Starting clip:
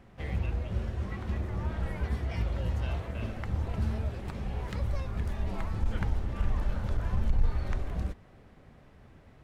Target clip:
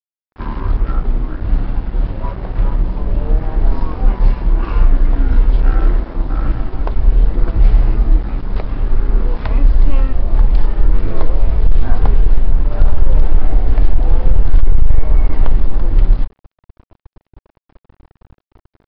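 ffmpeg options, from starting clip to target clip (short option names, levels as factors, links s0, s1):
-af "asubboost=boost=3.5:cutoff=93,asetrate=22050,aresample=44100,aresample=11025,aeval=exprs='sgn(val(0))*max(abs(val(0))-0.00631,0)':c=same,aresample=44100,apsyclip=7.5,volume=0.841"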